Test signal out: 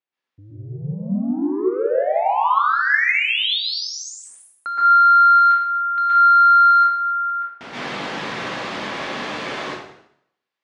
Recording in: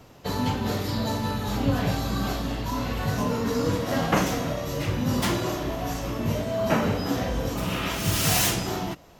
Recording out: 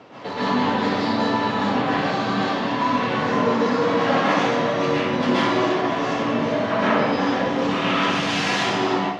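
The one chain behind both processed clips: in parallel at +1 dB: compression, threshold -32 dBFS; on the sum: saturation -23 dBFS; band-pass 260–3600 Hz; distance through air 61 m; plate-style reverb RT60 0.73 s, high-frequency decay 0.9×, pre-delay 110 ms, DRR -9 dB; trim +1 dB

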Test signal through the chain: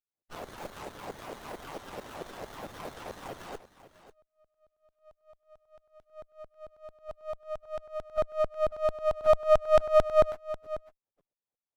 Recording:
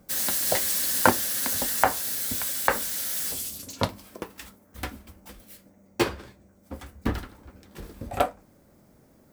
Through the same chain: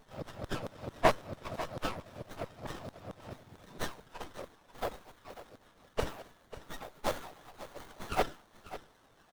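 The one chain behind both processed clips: spectrum inverted on a logarithmic axis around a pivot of 1 kHz; dynamic bell 110 Hz, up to +6 dB, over -31 dBFS, Q 1.2; in parallel at +2.5 dB: compression, threshold -29 dBFS; on the sum: LFO high-pass saw down 4.5 Hz 460–4200 Hz; on a send: delay 543 ms -14.5 dB; on the sum: sliding maximum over 17 samples; trim -5 dB

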